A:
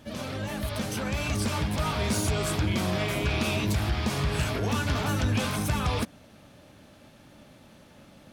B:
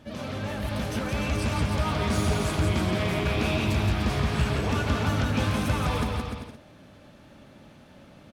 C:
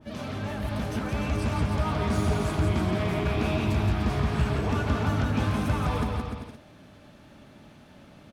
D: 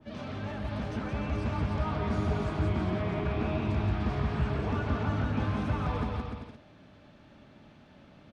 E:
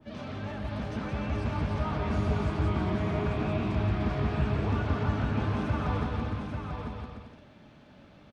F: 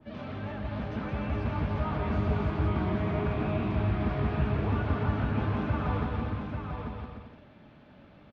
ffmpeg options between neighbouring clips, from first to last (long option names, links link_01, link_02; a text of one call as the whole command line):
ffmpeg -i in.wav -filter_complex "[0:a]highshelf=frequency=5300:gain=-9,asplit=2[link_01][link_02];[link_02]aecho=0:1:170|297.5|393.1|464.8|518.6:0.631|0.398|0.251|0.158|0.1[link_03];[link_01][link_03]amix=inputs=2:normalize=0" out.wav
ffmpeg -i in.wav -af "bandreject=frequency=530:width=12,adynamicequalizer=threshold=0.00501:dfrequency=1800:dqfactor=0.7:tfrequency=1800:tqfactor=0.7:attack=5:release=100:ratio=0.375:range=3:mode=cutabove:tftype=highshelf" out.wav
ffmpeg -i in.wav -filter_complex "[0:a]lowpass=4800,acrossover=split=120|2100[link_01][link_02][link_03];[link_03]alimiter=level_in=16dB:limit=-24dB:level=0:latency=1:release=18,volume=-16dB[link_04];[link_01][link_02][link_04]amix=inputs=3:normalize=0,volume=-4dB" out.wav
ffmpeg -i in.wav -af "aecho=1:1:842:0.531" out.wav
ffmpeg -i in.wav -af "lowpass=3300" out.wav